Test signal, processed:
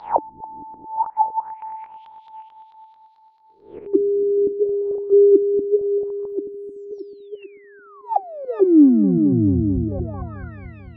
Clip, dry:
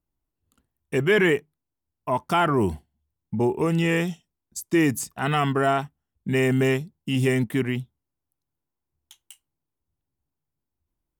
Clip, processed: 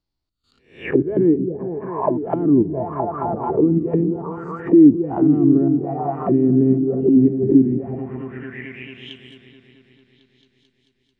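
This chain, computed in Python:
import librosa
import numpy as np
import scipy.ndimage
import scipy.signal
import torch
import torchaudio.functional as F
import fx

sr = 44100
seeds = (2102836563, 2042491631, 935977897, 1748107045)

p1 = fx.spec_swells(x, sr, rise_s=0.48)
p2 = fx.step_gate(p1, sr, bpm=103, pattern='xx.xxxx.', floor_db=-12.0, edge_ms=4.5)
p3 = p2 + fx.echo_opening(p2, sr, ms=220, hz=200, octaves=1, feedback_pct=70, wet_db=-3, dry=0)
p4 = fx.envelope_lowpass(p3, sr, base_hz=300.0, top_hz=4500.0, q=5.9, full_db=-19.5, direction='down')
y = p4 * 10.0 ** (-1.0 / 20.0)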